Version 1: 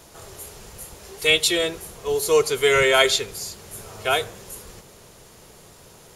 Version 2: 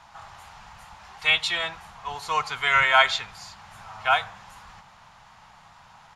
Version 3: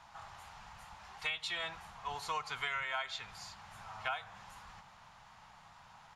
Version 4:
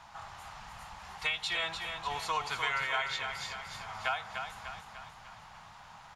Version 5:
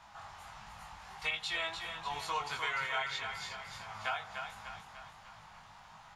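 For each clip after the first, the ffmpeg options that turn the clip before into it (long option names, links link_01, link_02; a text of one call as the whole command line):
ffmpeg -i in.wav -af "firequalizer=gain_entry='entry(190,0);entry(400,-19);entry(800,14);entry(2200,7);entry(11000,-18)':delay=0.05:min_phase=1,volume=-7.5dB" out.wav
ffmpeg -i in.wav -af "acompressor=threshold=-27dB:ratio=16,volume=-6.5dB" out.wav
ffmpeg -i in.wav -af "aecho=1:1:298|596|894|1192|1490|1788:0.473|0.246|0.128|0.0665|0.0346|0.018,volume=4.5dB" out.wav
ffmpeg -i in.wav -af "flanger=delay=19:depth=2.5:speed=1.5" out.wav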